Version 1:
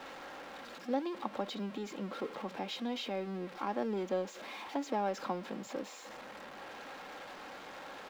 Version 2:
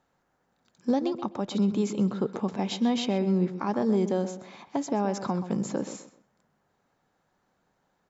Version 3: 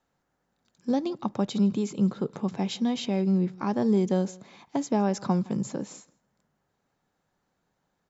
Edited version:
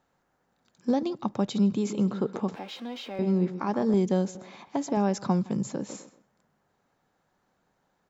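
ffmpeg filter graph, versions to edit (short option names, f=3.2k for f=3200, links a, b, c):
-filter_complex "[2:a]asplit=3[a][b][c];[1:a]asplit=5[d][e][f][g][h];[d]atrim=end=1.032[i];[a]atrim=start=1.028:end=1.852[j];[e]atrim=start=1.848:end=2.552[k];[0:a]atrim=start=2.548:end=3.192[l];[f]atrim=start=3.188:end=3.942[m];[b]atrim=start=3.938:end=4.352[n];[g]atrim=start=4.348:end=4.972[o];[c]atrim=start=4.968:end=5.892[p];[h]atrim=start=5.888[q];[i][j]acrossfade=d=0.004:c1=hsin:c2=hsin[r];[r][k]acrossfade=d=0.004:c1=hsin:c2=hsin[s];[s][l]acrossfade=d=0.004:c1=hsin:c2=hsin[t];[t][m]acrossfade=d=0.004:c1=hsin:c2=hsin[u];[u][n]acrossfade=d=0.004:c1=hsin:c2=hsin[v];[v][o]acrossfade=d=0.004:c1=hsin:c2=hsin[w];[w][p]acrossfade=d=0.004:c1=hsin:c2=hsin[x];[x][q]acrossfade=d=0.004:c1=hsin:c2=hsin"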